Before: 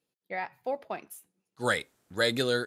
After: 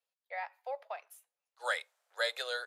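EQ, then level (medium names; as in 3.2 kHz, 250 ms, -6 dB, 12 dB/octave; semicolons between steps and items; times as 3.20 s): steep high-pass 540 Hz 48 dB/octave; treble shelf 6.8 kHz -6.5 dB; -4.5 dB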